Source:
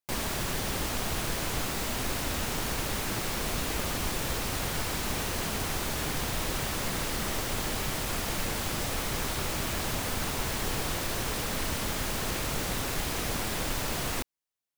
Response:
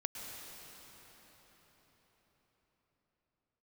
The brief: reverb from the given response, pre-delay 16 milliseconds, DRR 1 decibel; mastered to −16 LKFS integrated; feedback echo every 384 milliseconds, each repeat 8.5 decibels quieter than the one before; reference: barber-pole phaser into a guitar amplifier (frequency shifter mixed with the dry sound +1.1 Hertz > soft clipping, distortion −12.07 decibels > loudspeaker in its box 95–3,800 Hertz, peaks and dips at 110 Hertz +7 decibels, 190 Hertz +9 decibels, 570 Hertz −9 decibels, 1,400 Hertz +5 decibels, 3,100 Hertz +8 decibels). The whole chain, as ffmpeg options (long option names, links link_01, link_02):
-filter_complex "[0:a]aecho=1:1:384|768|1152|1536:0.376|0.143|0.0543|0.0206,asplit=2[link_01][link_02];[1:a]atrim=start_sample=2205,adelay=16[link_03];[link_02][link_03]afir=irnorm=-1:irlink=0,volume=-2dB[link_04];[link_01][link_04]amix=inputs=2:normalize=0,asplit=2[link_05][link_06];[link_06]afreqshift=1.1[link_07];[link_05][link_07]amix=inputs=2:normalize=1,asoftclip=threshold=-30dB,highpass=95,equalizer=frequency=110:width_type=q:width=4:gain=7,equalizer=frequency=190:width_type=q:width=4:gain=9,equalizer=frequency=570:width_type=q:width=4:gain=-9,equalizer=frequency=1400:width_type=q:width=4:gain=5,equalizer=frequency=3100:width_type=q:width=4:gain=8,lowpass=frequency=3800:width=0.5412,lowpass=frequency=3800:width=1.3066,volume=18.5dB"